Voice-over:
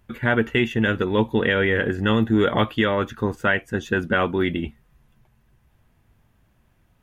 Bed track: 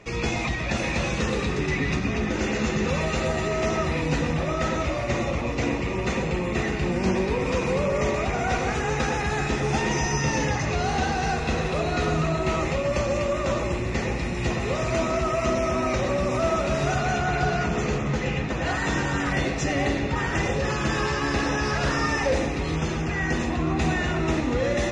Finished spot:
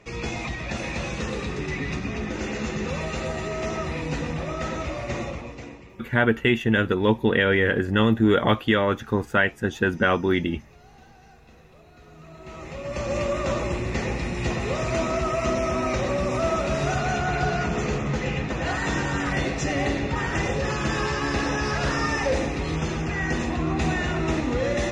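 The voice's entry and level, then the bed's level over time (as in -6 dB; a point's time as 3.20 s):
5.90 s, 0.0 dB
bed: 5.23 s -4 dB
6.16 s -27 dB
12.02 s -27 dB
13.18 s -0.5 dB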